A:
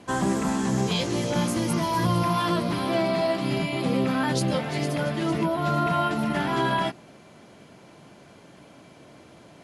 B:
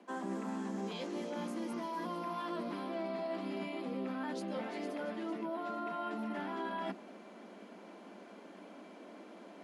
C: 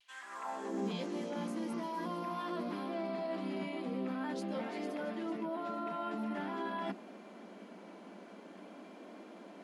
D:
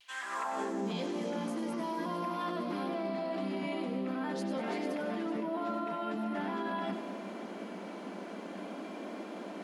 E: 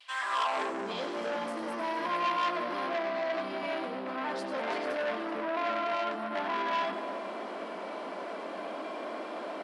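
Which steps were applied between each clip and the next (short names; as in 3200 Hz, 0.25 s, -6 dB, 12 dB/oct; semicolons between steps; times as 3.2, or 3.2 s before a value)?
steep high-pass 190 Hz 96 dB/oct; reverse; compressor 4:1, threshold -37 dBFS, peak gain reduction 14 dB; reverse; high shelf 3300 Hz -12 dB; gain -1 dB
high-pass sweep 3300 Hz -> 100 Hz, 0.02–1.13; vibrato 0.47 Hz 25 cents
in parallel at -1 dB: negative-ratio compressor -43 dBFS, ratio -0.5; on the sum: split-band echo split 760 Hz, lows 0.347 s, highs 96 ms, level -10 dB
speaker cabinet 400–9300 Hz, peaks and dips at 630 Hz +4 dB, 1100 Hz +5 dB, 6600 Hz -9 dB; doubler 22 ms -12 dB; core saturation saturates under 2200 Hz; gain +5.5 dB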